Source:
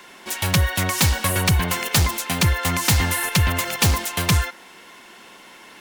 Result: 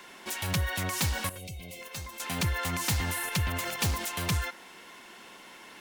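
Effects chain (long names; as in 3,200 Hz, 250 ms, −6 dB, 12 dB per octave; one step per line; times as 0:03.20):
0:01.38–0:01.82: gain on a spectral selection 790–2,000 Hz −21 dB
brickwall limiter −19 dBFS, peak gain reduction 9.5 dB
0:01.29–0:02.20: tuned comb filter 530 Hz, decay 0.17 s, harmonics all, mix 80%
level −4.5 dB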